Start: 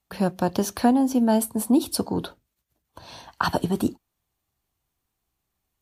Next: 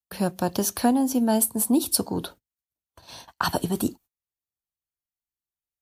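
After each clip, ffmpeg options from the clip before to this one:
-af "agate=range=-22dB:threshold=-44dB:ratio=16:detection=peak,highshelf=f=5.8k:g=11.5,volume=-2dB"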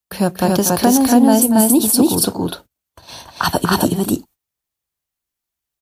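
-af "aecho=1:1:239.1|279.9:0.316|0.891,alimiter=level_in=9dB:limit=-1dB:release=50:level=0:latency=1,volume=-1dB"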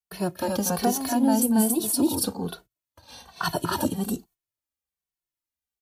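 -filter_complex "[0:a]asplit=2[a][b];[b]adelay=2.2,afreqshift=-1.2[c];[a][c]amix=inputs=2:normalize=1,volume=-7dB"

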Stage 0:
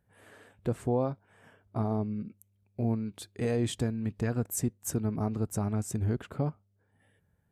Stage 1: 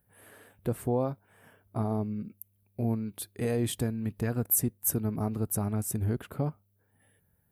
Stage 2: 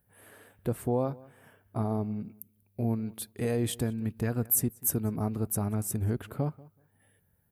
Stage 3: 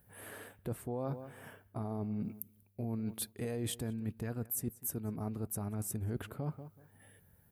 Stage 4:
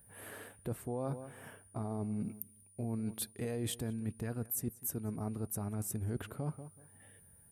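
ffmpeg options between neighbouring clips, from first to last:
-af "aexciter=amount=2.9:drive=9.5:freq=9.7k"
-filter_complex "[0:a]asplit=2[a][b];[b]adelay=188,lowpass=f=4.3k:p=1,volume=-22dB,asplit=2[c][d];[d]adelay=188,lowpass=f=4.3k:p=1,volume=0.17[e];[a][c][e]amix=inputs=3:normalize=0"
-af "alimiter=limit=-22.5dB:level=0:latency=1:release=428,areverse,acompressor=threshold=-40dB:ratio=6,areverse,volume=5.5dB"
-af "aeval=exprs='val(0)+0.000891*sin(2*PI*9500*n/s)':c=same"

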